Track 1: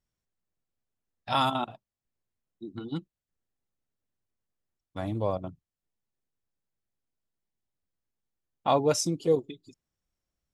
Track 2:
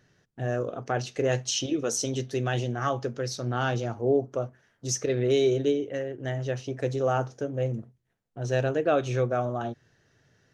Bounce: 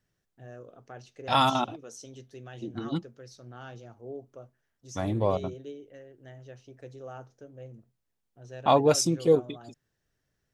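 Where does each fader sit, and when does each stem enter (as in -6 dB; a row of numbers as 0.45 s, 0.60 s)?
+3.0 dB, -17.0 dB; 0.00 s, 0.00 s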